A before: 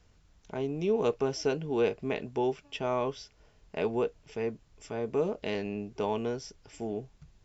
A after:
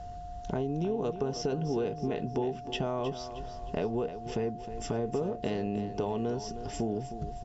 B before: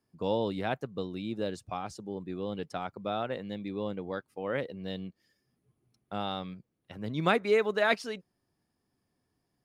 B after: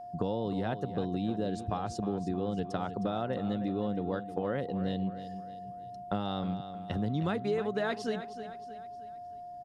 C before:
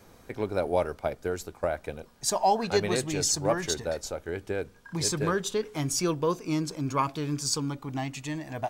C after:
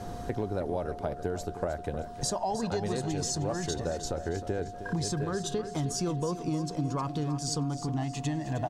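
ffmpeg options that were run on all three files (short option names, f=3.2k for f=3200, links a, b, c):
-filter_complex "[0:a]lowshelf=f=350:g=9,asplit=2[a][b];[b]alimiter=limit=-19.5dB:level=0:latency=1,volume=1dB[c];[a][c]amix=inputs=2:normalize=0,acompressor=threshold=-33dB:ratio=5,equalizer=f=2.3k:w=7.5:g=-11,asplit=2[d][e];[e]aecho=0:1:312|624|936|1248:0.266|0.117|0.0515|0.0227[f];[d][f]amix=inputs=2:normalize=0,aeval=exprs='val(0)+0.00631*sin(2*PI*710*n/s)':c=same,lowpass=9.7k,volume=2.5dB"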